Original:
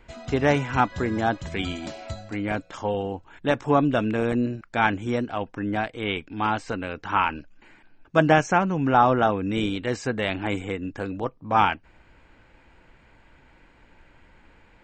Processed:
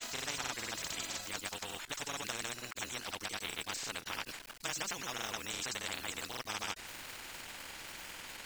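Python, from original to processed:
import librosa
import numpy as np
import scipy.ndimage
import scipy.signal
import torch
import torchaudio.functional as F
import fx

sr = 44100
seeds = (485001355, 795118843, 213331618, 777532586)

y = F.preemphasis(torch.from_numpy(x), 0.97).numpy()
y = fx.stretch_grains(y, sr, factor=0.57, grain_ms=46.0)
y = fx.quant_dither(y, sr, seeds[0], bits=12, dither='none')
y = fx.granulator(y, sr, seeds[1], grain_ms=100.0, per_s=20.0, spray_ms=100.0, spread_st=0)
y = fx.spectral_comp(y, sr, ratio=4.0)
y = y * librosa.db_to_amplitude(2.5)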